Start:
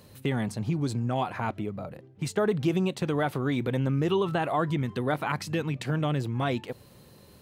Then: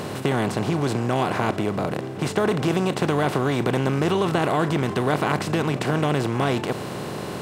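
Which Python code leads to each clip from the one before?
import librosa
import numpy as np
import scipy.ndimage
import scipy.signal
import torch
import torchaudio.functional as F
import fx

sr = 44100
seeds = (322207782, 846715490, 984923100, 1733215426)

y = fx.bin_compress(x, sr, power=0.4)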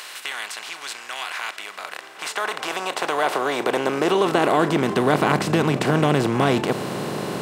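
y = fx.filter_sweep_highpass(x, sr, from_hz=1900.0, to_hz=150.0, start_s=1.59, end_s=5.31, q=0.88)
y = y * librosa.db_to_amplitude(3.5)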